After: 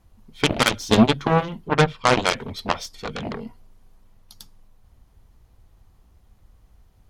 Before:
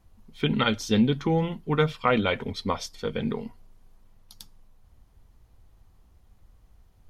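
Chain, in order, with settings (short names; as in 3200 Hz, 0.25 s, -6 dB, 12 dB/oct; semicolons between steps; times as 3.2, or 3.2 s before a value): 1.68–2.19 LPF 2400 Hz 6 dB/oct; added harmonics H 7 -12 dB, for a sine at -9.5 dBFS; gain +5.5 dB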